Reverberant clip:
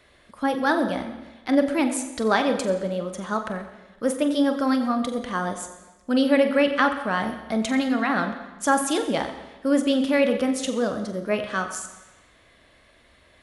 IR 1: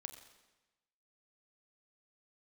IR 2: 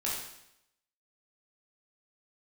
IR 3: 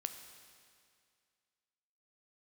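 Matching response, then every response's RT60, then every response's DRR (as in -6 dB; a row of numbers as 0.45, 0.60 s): 1; 1.1, 0.80, 2.2 s; 6.0, -6.5, 7.0 dB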